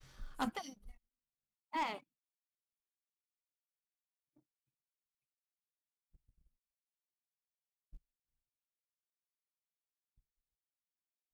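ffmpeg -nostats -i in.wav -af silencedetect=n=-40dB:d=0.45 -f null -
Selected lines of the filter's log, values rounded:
silence_start: 0.69
silence_end: 1.74 | silence_duration: 1.05
silence_start: 1.97
silence_end: 11.33 | silence_duration: 9.37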